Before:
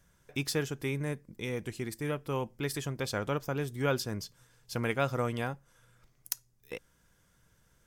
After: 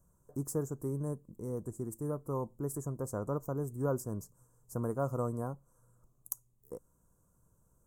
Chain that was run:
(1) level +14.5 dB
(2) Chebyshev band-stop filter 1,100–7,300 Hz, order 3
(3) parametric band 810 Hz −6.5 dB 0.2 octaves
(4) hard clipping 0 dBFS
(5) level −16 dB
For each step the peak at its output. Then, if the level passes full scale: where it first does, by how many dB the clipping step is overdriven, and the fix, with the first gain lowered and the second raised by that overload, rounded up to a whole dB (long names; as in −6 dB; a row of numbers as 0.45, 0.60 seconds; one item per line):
+3.0, +3.5, +3.5, 0.0, −16.0 dBFS
step 1, 3.5 dB
step 1 +10.5 dB, step 5 −12 dB